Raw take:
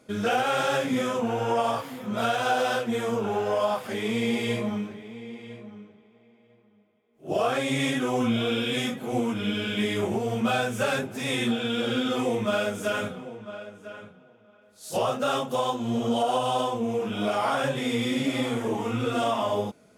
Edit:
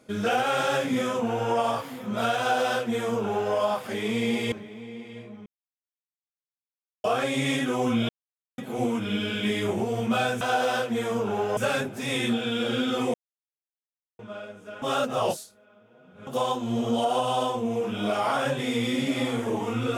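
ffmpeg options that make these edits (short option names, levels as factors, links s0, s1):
-filter_complex "[0:a]asplit=12[s0][s1][s2][s3][s4][s5][s6][s7][s8][s9][s10][s11];[s0]atrim=end=4.522[s12];[s1]atrim=start=4.858:end=5.8,asetpts=PTS-STARTPTS,afade=t=out:st=0.938:d=0.004:c=hsin[s13];[s2]atrim=start=5.8:end=7.38,asetpts=PTS-STARTPTS,volume=0[s14];[s3]atrim=start=7.38:end=8.43,asetpts=PTS-STARTPTS,afade=t=in:d=0.004:c=hsin,afade=t=out:st=1.046:d=0.004:c=hsin[s15];[s4]atrim=start=8.43:end=8.92,asetpts=PTS-STARTPTS,volume=0[s16];[s5]atrim=start=8.92:end=10.752,asetpts=PTS-STARTPTS,afade=t=in:d=0.004:c=hsin[s17];[s6]atrim=start=2.378:end=3.542[s18];[s7]atrim=start=10.748:end=12.32,asetpts=PTS-STARTPTS,afade=t=out:st=1.568:d=0.004:c=hsin[s19];[s8]atrim=start=12.32:end=13.37,asetpts=PTS-STARTPTS,volume=0[s20];[s9]atrim=start=13.37:end=14.002,asetpts=PTS-STARTPTS,afade=t=in:d=0.004:c=hsin[s21];[s10]atrim=start=13.998:end=15.452,asetpts=PTS-STARTPTS,areverse[s22];[s11]atrim=start=15.448[s23];[s13][s14][s15][s16][s17]concat=n=5:v=0:a=1[s24];[s12][s24]acrossfade=d=0.004:c1=hsin:c2=hsin[s25];[s25][s18]acrossfade=d=0.004:c1=hsin:c2=hsin[s26];[s19][s20][s21]concat=n=3:v=0:a=1[s27];[s26][s27]acrossfade=d=0.004:c1=hsin:c2=hsin[s28];[s28][s22]acrossfade=d=0.004:c1=hsin:c2=hsin[s29];[s29][s23]acrossfade=d=0.004:c1=hsin:c2=hsin"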